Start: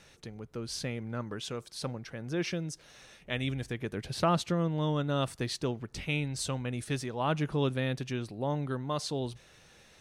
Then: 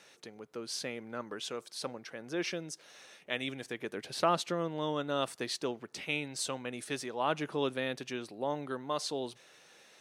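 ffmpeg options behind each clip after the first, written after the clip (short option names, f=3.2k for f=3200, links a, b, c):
-af "highpass=310"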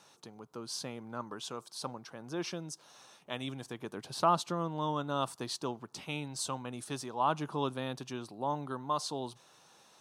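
-af "equalizer=f=125:t=o:w=1:g=5,equalizer=f=500:t=o:w=1:g=-6,equalizer=f=1k:t=o:w=1:g=9,equalizer=f=2k:t=o:w=1:g=-12"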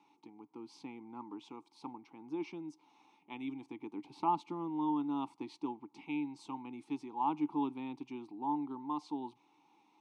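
-filter_complex "[0:a]asplit=3[a][b][c];[a]bandpass=f=300:t=q:w=8,volume=0dB[d];[b]bandpass=f=870:t=q:w=8,volume=-6dB[e];[c]bandpass=f=2.24k:t=q:w=8,volume=-9dB[f];[d][e][f]amix=inputs=3:normalize=0,volume=7.5dB"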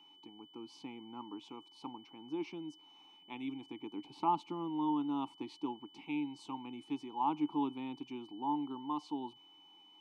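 -af "aeval=exprs='val(0)+0.00112*sin(2*PI*3000*n/s)':c=same"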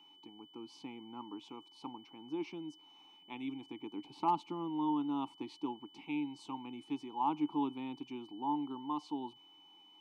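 -af "asoftclip=type=hard:threshold=-22dB"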